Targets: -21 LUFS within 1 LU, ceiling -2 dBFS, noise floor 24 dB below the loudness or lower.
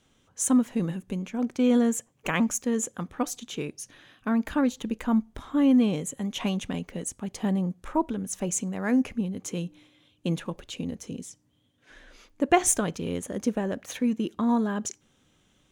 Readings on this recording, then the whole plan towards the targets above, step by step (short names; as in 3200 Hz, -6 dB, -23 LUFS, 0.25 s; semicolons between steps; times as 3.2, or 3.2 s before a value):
loudness -27.5 LUFS; peak -7.0 dBFS; loudness target -21.0 LUFS
-> gain +6.5 dB; limiter -2 dBFS